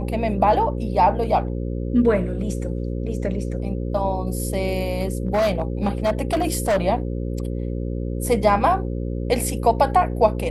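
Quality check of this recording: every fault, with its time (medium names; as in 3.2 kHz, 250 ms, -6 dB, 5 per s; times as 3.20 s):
buzz 60 Hz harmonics 9 -26 dBFS
4.97–6.78 s: clipped -15.5 dBFS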